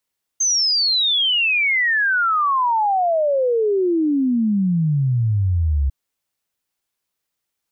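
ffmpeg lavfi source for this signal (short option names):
-f lavfi -i "aevalsrc='0.178*clip(min(t,5.5-t)/0.01,0,1)*sin(2*PI*6400*5.5/log(66/6400)*(exp(log(66/6400)*t/5.5)-1))':d=5.5:s=44100"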